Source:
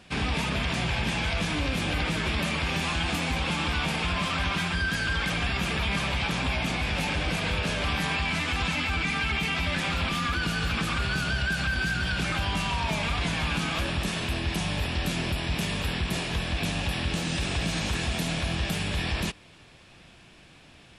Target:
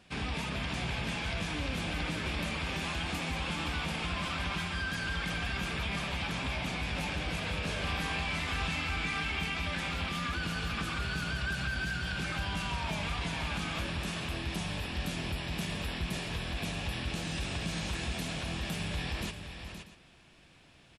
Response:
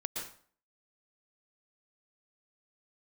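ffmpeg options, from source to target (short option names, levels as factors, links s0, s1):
-filter_complex "[0:a]asettb=1/sr,asplit=3[s0][s1][s2];[s0]atrim=end=7.654[s3];[s1]atrim=start=7.65:end=9.44,asetpts=PTS-STARTPTS,afade=t=in:d=0.004:c=qsin,afade=t=out:st=1.786:d=0.004:c=qsin,asplit=2[s4][s5];[s5]adelay=38,volume=0.501[s6];[s4][s6]amix=inputs=2:normalize=0,atrim=end_sample=78939[s7];[s2]atrim=start=9.436[s8];[s3][s7]acrossfade=d=0.004:c1=hsin:c2=qsin[s9];[s9][s8]acrossfade=d=0.004:c1=qsin:c2=hsin,asplit=2[s10][s11];[s11]aecho=0:1:421|519|639:0.188|0.355|0.119[s12];[s10][s12]amix=inputs=2:normalize=0,volume=0.422"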